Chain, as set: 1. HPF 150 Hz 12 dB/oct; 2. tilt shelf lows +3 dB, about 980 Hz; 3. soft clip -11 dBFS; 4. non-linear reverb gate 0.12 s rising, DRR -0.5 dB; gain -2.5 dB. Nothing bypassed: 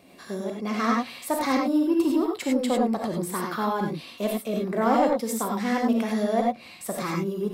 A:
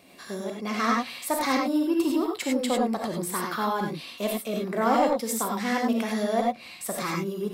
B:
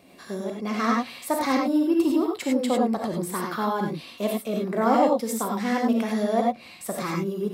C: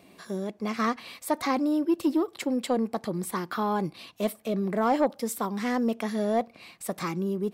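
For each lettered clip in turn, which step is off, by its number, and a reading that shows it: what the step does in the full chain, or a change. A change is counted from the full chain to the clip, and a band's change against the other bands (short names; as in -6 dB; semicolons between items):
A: 2, momentary loudness spread change -1 LU; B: 3, distortion -23 dB; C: 4, crest factor change -3.0 dB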